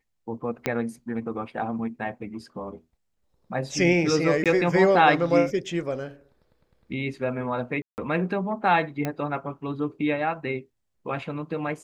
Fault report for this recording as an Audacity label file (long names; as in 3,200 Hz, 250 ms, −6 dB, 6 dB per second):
0.660000	0.660000	click −10 dBFS
4.440000	4.460000	drop-out 17 ms
7.820000	7.980000	drop-out 159 ms
9.050000	9.050000	click −14 dBFS